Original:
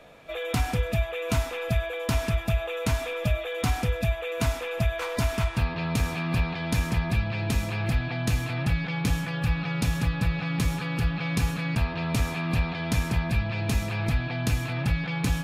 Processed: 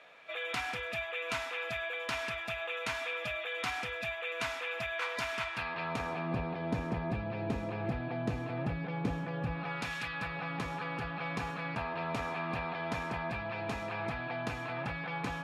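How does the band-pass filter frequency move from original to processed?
band-pass filter, Q 0.85
5.53 s 2 kHz
6.38 s 480 Hz
9.50 s 480 Hz
10.00 s 2.3 kHz
10.39 s 910 Hz

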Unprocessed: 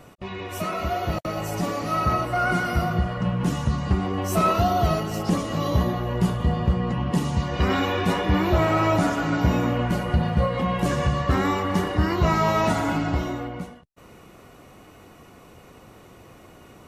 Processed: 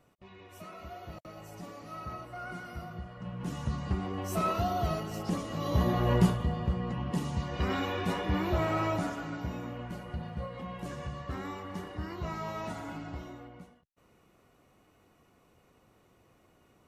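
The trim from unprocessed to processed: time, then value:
3.12 s -18.5 dB
3.68 s -9.5 dB
5.59 s -9.5 dB
6.13 s +1.5 dB
6.48 s -9 dB
8.81 s -9 dB
9.50 s -16.5 dB

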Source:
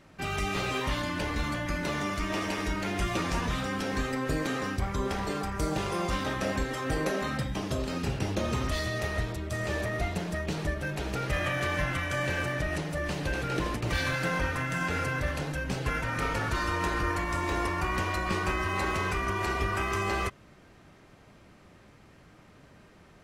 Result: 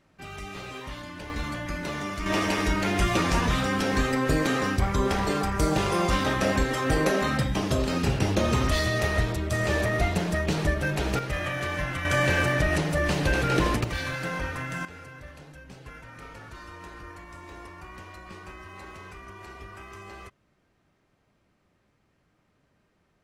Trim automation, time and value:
-8 dB
from 1.30 s -1 dB
from 2.26 s +6 dB
from 11.19 s -0.5 dB
from 12.05 s +7 dB
from 13.84 s -2 dB
from 14.85 s -14 dB

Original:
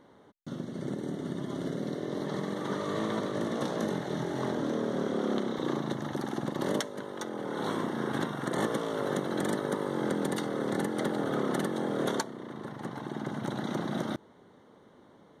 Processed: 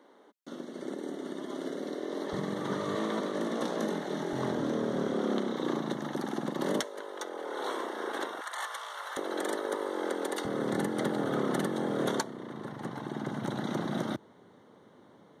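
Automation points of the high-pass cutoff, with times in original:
high-pass 24 dB/octave
260 Hz
from 2.33 s 62 Hz
from 2.95 s 190 Hz
from 4.33 s 59 Hz
from 5.13 s 160 Hz
from 6.83 s 370 Hz
from 8.41 s 880 Hz
from 9.17 s 330 Hz
from 10.45 s 86 Hz

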